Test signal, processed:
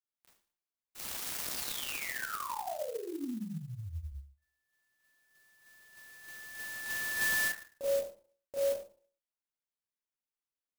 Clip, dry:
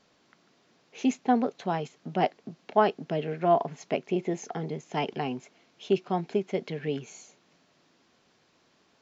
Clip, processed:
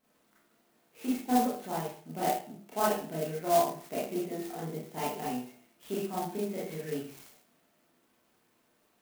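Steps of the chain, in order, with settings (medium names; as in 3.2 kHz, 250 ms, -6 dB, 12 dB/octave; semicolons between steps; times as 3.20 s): feedback comb 68 Hz, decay 0.42 s, harmonics odd, mix 70%; Schroeder reverb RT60 0.44 s, combs from 25 ms, DRR -8.5 dB; sampling jitter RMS 0.056 ms; trim -5 dB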